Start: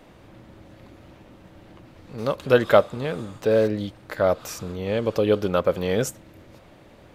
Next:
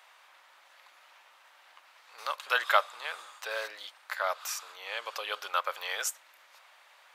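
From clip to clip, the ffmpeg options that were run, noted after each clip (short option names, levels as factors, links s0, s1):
-af "highpass=f=940:w=0.5412,highpass=f=940:w=1.3066"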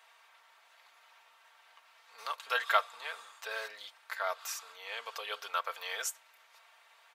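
-af "aecho=1:1:4.4:0.65,volume=0.562"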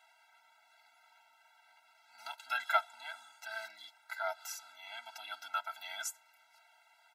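-af "afftfilt=real='re*eq(mod(floor(b*sr/1024/320),2),0)':imag='im*eq(mod(floor(b*sr/1024/320),2),0)':win_size=1024:overlap=0.75,volume=0.891"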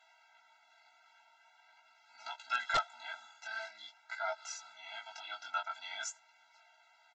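-af "flanger=delay=15.5:depth=7:speed=0.45,aresample=16000,aeval=exprs='0.0473*(abs(mod(val(0)/0.0473+3,4)-2)-1)':c=same,aresample=44100,volume=1.5"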